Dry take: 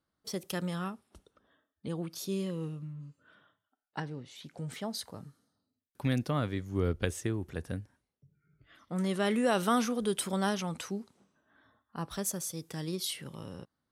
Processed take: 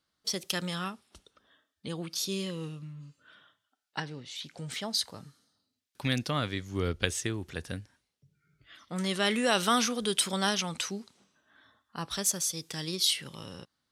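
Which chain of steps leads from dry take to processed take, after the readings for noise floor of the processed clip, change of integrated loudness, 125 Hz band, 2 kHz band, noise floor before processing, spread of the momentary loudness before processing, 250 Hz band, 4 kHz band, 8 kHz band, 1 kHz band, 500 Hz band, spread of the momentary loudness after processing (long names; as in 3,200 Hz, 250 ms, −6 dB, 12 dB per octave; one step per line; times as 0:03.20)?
−83 dBFS, +3.0 dB, −1.5 dB, +5.5 dB, −85 dBFS, 17 LU, −1.0 dB, +10.5 dB, +7.5 dB, +2.0 dB, −0.5 dB, 16 LU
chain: parametric band 4,300 Hz +12.5 dB 2.8 octaves
level −1.5 dB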